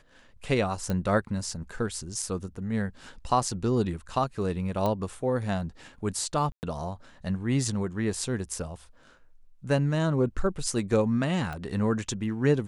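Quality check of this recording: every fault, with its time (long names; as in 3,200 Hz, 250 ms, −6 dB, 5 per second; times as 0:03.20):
0:00.90: click −17 dBFS
0:04.86: click −16 dBFS
0:06.52–0:06.63: drop-out 109 ms
0:11.53: click −23 dBFS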